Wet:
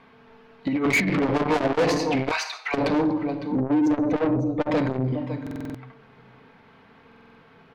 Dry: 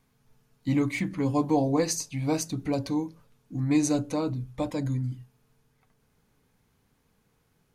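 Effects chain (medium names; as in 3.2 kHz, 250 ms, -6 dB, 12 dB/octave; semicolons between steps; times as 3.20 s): 3.60–4.66 s: spectral contrast enhancement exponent 1.7; distance through air 370 m; delay 555 ms -18 dB; simulated room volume 2800 m³, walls furnished, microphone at 1.6 m; 0.68–1.22 s: compressor with a negative ratio -29 dBFS, ratio -0.5; 2.31–2.74 s: Bessel high-pass 1.5 kHz, order 6; overdrive pedal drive 30 dB, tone 5.5 kHz, clips at -11.5 dBFS; buffer glitch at 5.42/7.07 s, samples 2048, times 6; transformer saturation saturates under 360 Hz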